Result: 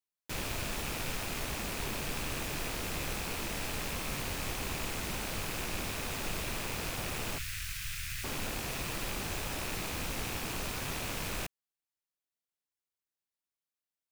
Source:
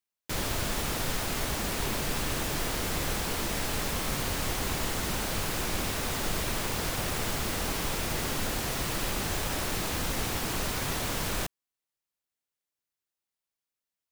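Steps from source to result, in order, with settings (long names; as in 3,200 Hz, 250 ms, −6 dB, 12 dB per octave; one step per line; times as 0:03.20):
loose part that buzzes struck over −41 dBFS, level −25 dBFS
0:07.38–0:08.24: Chebyshev band-stop filter 120–1,600 Hz, order 3
level −6 dB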